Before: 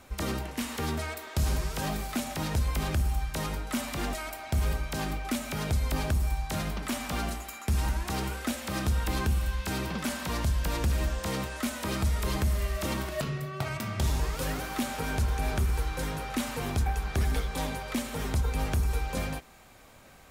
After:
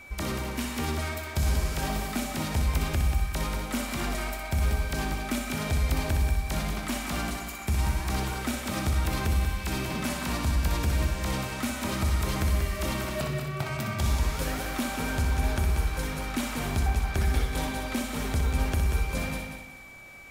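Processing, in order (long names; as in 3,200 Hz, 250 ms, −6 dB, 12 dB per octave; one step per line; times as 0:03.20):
notch filter 480 Hz, Q 12
echo machine with several playback heads 62 ms, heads first and third, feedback 49%, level −7 dB
steady tone 2,300 Hz −46 dBFS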